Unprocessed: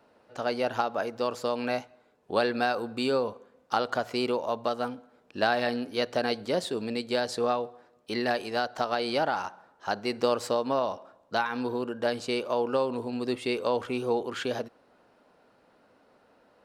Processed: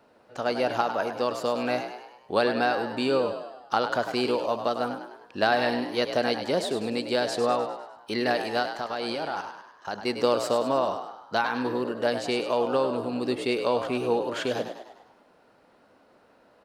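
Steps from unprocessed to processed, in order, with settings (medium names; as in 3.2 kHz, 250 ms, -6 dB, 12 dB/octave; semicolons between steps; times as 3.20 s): 2.44–3.77 s: treble shelf 6.1 kHz -5.5 dB; 8.63–10.06 s: level held to a coarse grid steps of 11 dB; frequency-shifting echo 101 ms, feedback 51%, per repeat +59 Hz, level -9 dB; trim +2 dB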